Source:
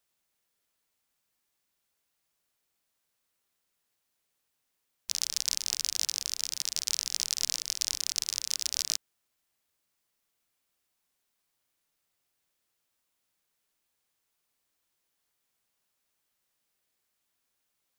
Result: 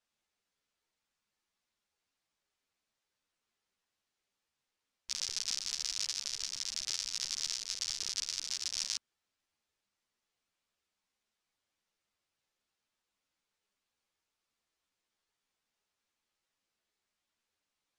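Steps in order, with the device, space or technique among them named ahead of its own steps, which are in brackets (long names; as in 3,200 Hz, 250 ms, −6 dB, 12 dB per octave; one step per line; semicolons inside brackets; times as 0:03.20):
string-machine ensemble chorus (string-ensemble chorus; low-pass filter 6,400 Hz 12 dB per octave)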